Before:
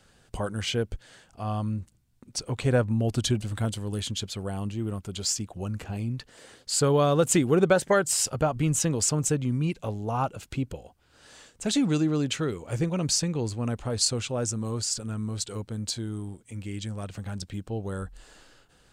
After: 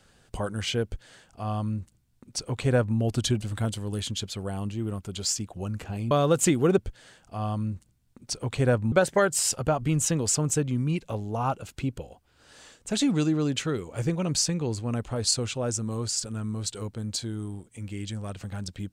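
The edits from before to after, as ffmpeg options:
-filter_complex "[0:a]asplit=4[s0][s1][s2][s3];[s0]atrim=end=6.112[s4];[s1]atrim=start=6.988:end=7.662[s5];[s2]atrim=start=0.838:end=2.982[s6];[s3]atrim=start=7.658[s7];[s4][s5]acrossfade=d=0.004:c1=hsin:c2=hsin[s8];[s8][s6]acrossfade=d=0.004:c1=hsin:c2=hsin[s9];[s9][s7]acrossfade=d=0.004:c1=hsin:c2=hsin"

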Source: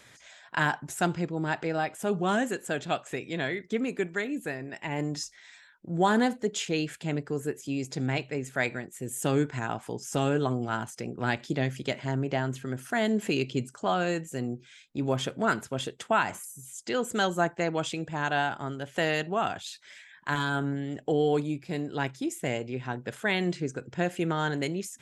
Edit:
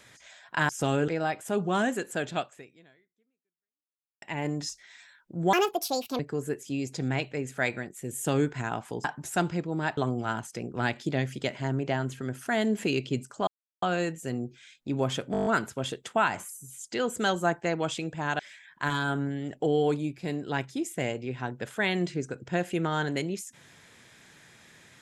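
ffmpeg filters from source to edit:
-filter_complex "[0:a]asplit=17[s0][s1][s2][s3][s4][s5][s6][s7][s8][s9][s10][s11][s12][s13][s14][s15][s16];[s0]atrim=end=0.692[s17];[s1]atrim=start=10.018:end=10.412[s18];[s2]atrim=start=1.618:end=4.76,asetpts=PTS-STARTPTS,afade=t=out:st=1.282:d=1.86:c=exp[s19];[s3]atrim=start=4.76:end=6.074,asetpts=PTS-STARTPTS,afade=t=in:d=0.004:c=hsin[s20];[s4]atrim=start=6.07:end=7.17,asetpts=PTS-STARTPTS,asetrate=73206,aresample=44100[s21];[s5]atrim=start=7.166:end=10.022[s22];[s6]atrim=start=0.688:end=1.622[s23];[s7]atrim=start=10.408:end=13.91,asetpts=PTS-STARTPTS,afade=t=out:st=3.498:d=0.004:c=hsin,apad=pad_dur=0.35[s24];[s8]atrim=start=13.91:end=15.432,asetpts=PTS-STARTPTS,afade=t=in:d=0.004:c=hsin[s25];[s9]atrim=start=15.408:end=15.432[s26];[s10]atrim=start=15.408:end=15.432[s27];[s11]atrim=start=15.408:end=15.432[s28];[s12]atrim=start=15.408:end=15.432[s29];[s13]atrim=start=15.408:end=15.432[s30];[s14]atrim=start=15.408:end=15.432[s31];[s15]atrim=start=15.408:end=18.342[s32];[s16]atrim=start=19.848[s33];[s17][s18]acrossfade=d=0.004:c1=hsin:c2=hsin[s34];[s19][s20]concat=n=2:v=0:a=1[s35];[s34][s35]acrossfade=d=0.004:c1=hsin:c2=hsin[s36];[s36][s21]acrossfade=d=0.004:c1=hsin:c2=hsin[s37];[s37][s22]acrossfade=d=0.004:c1=hsin:c2=hsin[s38];[s38][s23]acrossfade=d=0.004:c1=hsin:c2=hsin[s39];[s24][s25]concat=n=2:v=0:a=1[s40];[s39][s40]acrossfade=d=0.004:c1=hsin:c2=hsin[s41];[s41][s26]acrossfade=d=0.004:c1=hsin:c2=hsin[s42];[s42][s27]acrossfade=d=0.004:c1=hsin:c2=hsin[s43];[s43][s28]acrossfade=d=0.004:c1=hsin:c2=hsin[s44];[s44][s29]acrossfade=d=0.004:c1=hsin:c2=hsin[s45];[s45][s30]acrossfade=d=0.004:c1=hsin:c2=hsin[s46];[s46][s31]acrossfade=d=0.004:c1=hsin:c2=hsin[s47];[s47][s32]acrossfade=d=0.004:c1=hsin:c2=hsin[s48];[s48][s33]acrossfade=d=0.004:c1=hsin:c2=hsin"

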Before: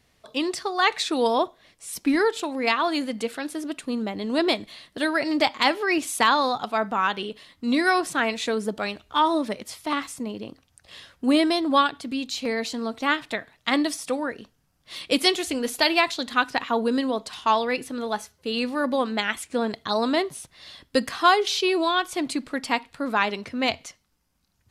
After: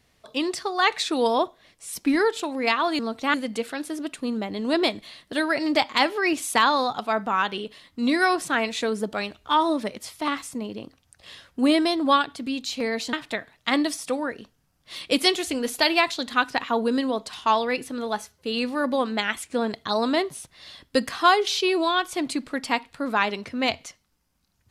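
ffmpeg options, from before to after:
-filter_complex "[0:a]asplit=4[s0][s1][s2][s3];[s0]atrim=end=2.992[s4];[s1]atrim=start=12.778:end=13.132[s5];[s2]atrim=start=2.988:end=12.782[s6];[s3]atrim=start=13.128[s7];[s4][s5]acrossfade=d=0.004:c1=hsin:c2=hsin[s8];[s8][s6]acrossfade=d=0.004:c1=hsin:c2=hsin[s9];[s9][s7]acrossfade=d=0.004:c1=hsin:c2=hsin"

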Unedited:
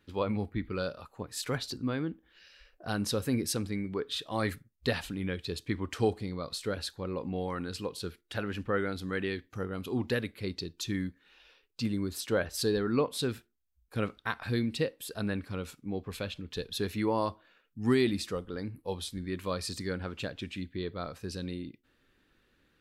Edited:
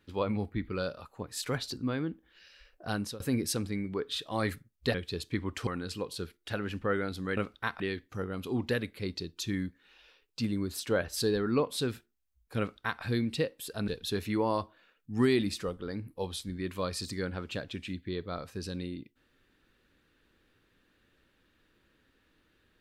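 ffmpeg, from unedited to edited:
-filter_complex "[0:a]asplit=7[s0][s1][s2][s3][s4][s5][s6];[s0]atrim=end=3.2,asetpts=PTS-STARTPTS,afade=t=out:st=2.94:d=0.26:silence=0.0944061[s7];[s1]atrim=start=3.2:end=4.942,asetpts=PTS-STARTPTS,afade=t=in:d=0.004:c=hsin:silence=0.0944061[s8];[s2]atrim=start=5.298:end=6.032[s9];[s3]atrim=start=7.508:end=9.212[s10];[s4]atrim=start=13.998:end=14.432[s11];[s5]atrim=start=9.208:end=15.292[s12];[s6]atrim=start=16.558[s13];[s7][s8]concat=n=2:v=0:a=1[s14];[s14][s9]acrossfade=d=0.004:c1=hsin:c2=hsin[s15];[s15][s10]acrossfade=d=0.004:c1=hsin:c2=hsin[s16];[s16][s11]acrossfade=d=0.004:c1=hsin:c2=hsin[s17];[s17][s12]acrossfade=d=0.004:c1=hsin:c2=hsin[s18];[s18][s13]acrossfade=d=0.004:c1=hsin:c2=hsin"

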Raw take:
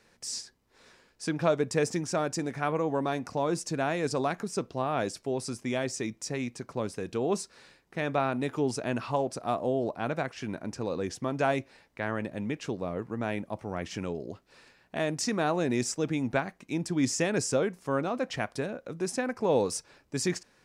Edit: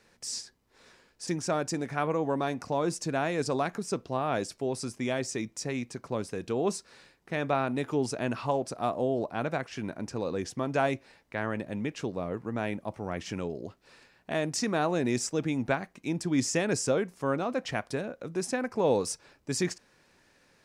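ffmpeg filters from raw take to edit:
-filter_complex "[0:a]asplit=2[s0][s1];[s0]atrim=end=1.272[s2];[s1]atrim=start=1.918[s3];[s2][s3]acrossfade=d=0.004:c1=hsin:c2=hsin"

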